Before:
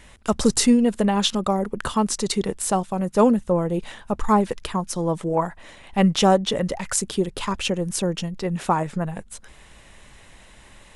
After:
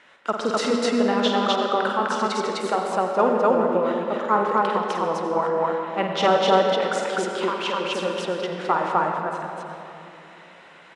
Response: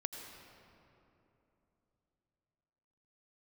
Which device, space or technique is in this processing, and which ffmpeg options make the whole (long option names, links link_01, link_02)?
station announcement: -filter_complex "[0:a]highpass=380,lowpass=3600,equalizer=frequency=1400:width_type=o:width=0.28:gain=8.5,aecho=1:1:49.56|253.6:0.447|1[link_01];[1:a]atrim=start_sample=2205[link_02];[link_01][link_02]afir=irnorm=-1:irlink=0"